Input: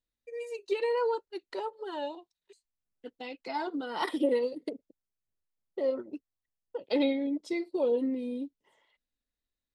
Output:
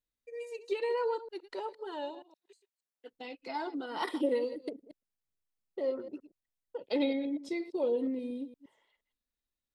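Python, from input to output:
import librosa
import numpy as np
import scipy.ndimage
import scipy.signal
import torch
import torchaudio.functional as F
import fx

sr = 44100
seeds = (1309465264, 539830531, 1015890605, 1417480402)

y = fx.reverse_delay(x, sr, ms=117, wet_db=-14)
y = fx.highpass(y, sr, hz=fx.line((2.09, 130.0), (3.09, 440.0)), slope=12, at=(2.09, 3.09), fade=0.02)
y = F.gain(torch.from_numpy(y), -3.0).numpy()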